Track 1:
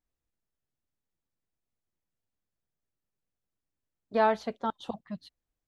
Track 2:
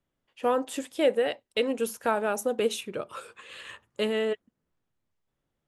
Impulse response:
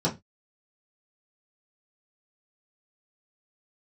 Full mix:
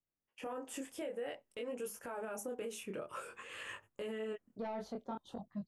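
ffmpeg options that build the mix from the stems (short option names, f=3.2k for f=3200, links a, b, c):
-filter_complex "[0:a]equalizer=f=2.4k:t=o:w=2.5:g=-13,asoftclip=type=tanh:threshold=-22.5dB,adelay=450,volume=1.5dB[a];[1:a]agate=range=-15dB:threshold=-56dB:ratio=16:detection=peak,equalizer=f=3.9k:w=3.1:g=-13,acompressor=threshold=-38dB:ratio=2.5,volume=2dB[b];[a][b]amix=inputs=2:normalize=0,flanger=delay=20:depth=6.2:speed=0.53,alimiter=level_in=9.5dB:limit=-24dB:level=0:latency=1:release=59,volume=-9.5dB"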